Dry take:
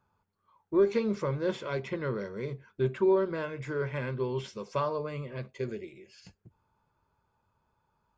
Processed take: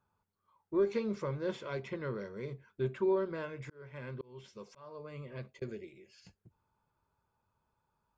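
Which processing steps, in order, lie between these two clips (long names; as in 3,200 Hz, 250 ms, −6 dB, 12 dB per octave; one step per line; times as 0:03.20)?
0:03.61–0:05.62: volume swells 569 ms
level −5.5 dB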